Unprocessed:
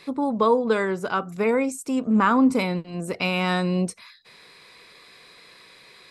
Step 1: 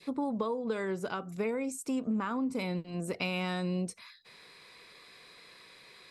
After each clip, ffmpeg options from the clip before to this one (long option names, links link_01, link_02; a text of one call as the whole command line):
ffmpeg -i in.wav -af "acompressor=threshold=-23dB:ratio=12,adynamicequalizer=threshold=0.00631:dfrequency=1200:dqfactor=1:tfrequency=1200:tqfactor=1:attack=5:release=100:ratio=0.375:range=2.5:mode=cutabove:tftype=bell,volume=-5dB" out.wav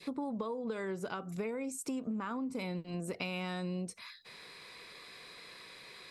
ffmpeg -i in.wav -af "acompressor=threshold=-40dB:ratio=3,volume=3dB" out.wav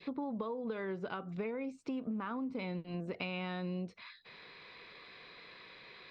ffmpeg -i in.wav -af "lowpass=frequency=3900:width=0.5412,lowpass=frequency=3900:width=1.3066,volume=-1dB" out.wav